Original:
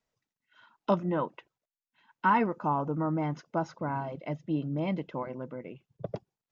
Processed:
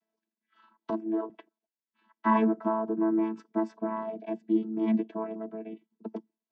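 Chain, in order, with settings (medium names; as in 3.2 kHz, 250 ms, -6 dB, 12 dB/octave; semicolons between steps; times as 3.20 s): vocoder on a held chord bare fifth, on A3; 0.90–1.30 s: ladder high-pass 280 Hz, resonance 45%; trim +3.5 dB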